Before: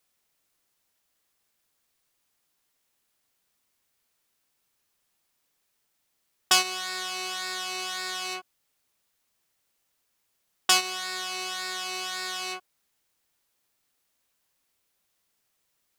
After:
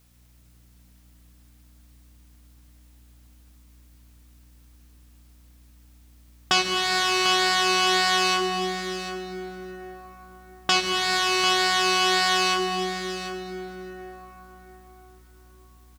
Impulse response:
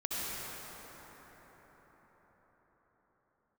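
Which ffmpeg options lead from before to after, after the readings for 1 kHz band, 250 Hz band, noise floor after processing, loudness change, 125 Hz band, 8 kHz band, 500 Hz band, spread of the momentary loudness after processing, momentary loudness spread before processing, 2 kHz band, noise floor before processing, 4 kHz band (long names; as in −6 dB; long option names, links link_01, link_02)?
+10.5 dB, +16.0 dB, −55 dBFS, +6.0 dB, can't be measured, +2.0 dB, +14.5 dB, 18 LU, 10 LU, +8.5 dB, −76 dBFS, +7.0 dB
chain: -filter_complex "[0:a]acrossover=split=6000[link_01][link_02];[link_02]acompressor=threshold=-46dB:ratio=4:attack=1:release=60[link_03];[link_01][link_03]amix=inputs=2:normalize=0,equalizer=frequency=100:width_type=o:width=1.9:gain=12,alimiter=limit=-15dB:level=0:latency=1:release=441,aeval=exprs='val(0)+0.000251*(sin(2*PI*60*n/s)+sin(2*PI*2*60*n/s)/2+sin(2*PI*3*60*n/s)/3+sin(2*PI*4*60*n/s)/4+sin(2*PI*5*60*n/s)/5)':channel_layout=same,aecho=1:1:746:0.299,asplit=2[link_04][link_05];[1:a]atrim=start_sample=2205,lowshelf=frequency=400:gain=10.5[link_06];[link_05][link_06]afir=irnorm=-1:irlink=0,volume=-11dB[link_07];[link_04][link_07]amix=inputs=2:normalize=0,volume=9dB"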